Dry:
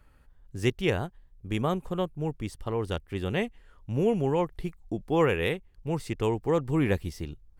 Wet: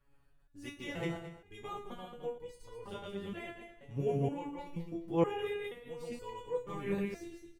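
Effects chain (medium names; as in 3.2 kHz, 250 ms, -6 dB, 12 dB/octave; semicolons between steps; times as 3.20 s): backward echo that repeats 107 ms, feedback 42%, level -0.5 dB; feedback delay 117 ms, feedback 50%, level -16.5 dB; resonator arpeggio 2.1 Hz 140–490 Hz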